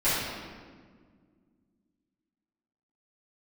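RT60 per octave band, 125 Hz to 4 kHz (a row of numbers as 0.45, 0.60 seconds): 2.6, 3.0, 1.9, 1.5, 1.4, 1.1 seconds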